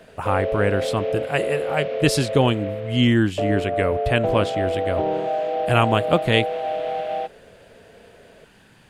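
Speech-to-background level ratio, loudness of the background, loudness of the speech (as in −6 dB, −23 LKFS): 3.0 dB, −25.5 LKFS, −22.5 LKFS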